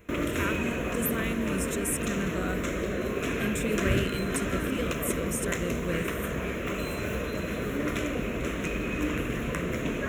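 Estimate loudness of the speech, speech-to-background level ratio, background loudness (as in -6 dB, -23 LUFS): -33.5 LUFS, -3.0 dB, -30.5 LUFS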